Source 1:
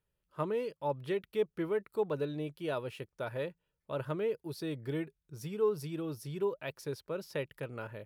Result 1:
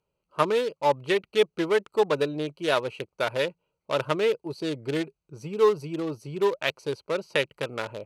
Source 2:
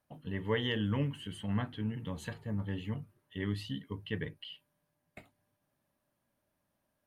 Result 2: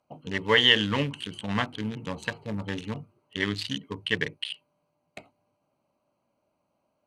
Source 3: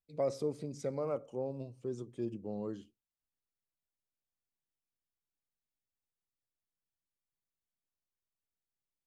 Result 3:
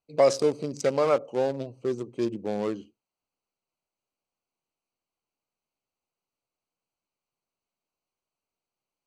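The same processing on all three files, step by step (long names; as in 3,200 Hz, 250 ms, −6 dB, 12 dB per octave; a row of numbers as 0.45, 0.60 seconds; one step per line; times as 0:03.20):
adaptive Wiener filter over 25 samples
low-pass filter 7,600 Hz 12 dB per octave
spectral tilt +4 dB per octave
loudness normalisation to −27 LKFS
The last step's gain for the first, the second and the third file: +14.5, +13.0, +16.5 decibels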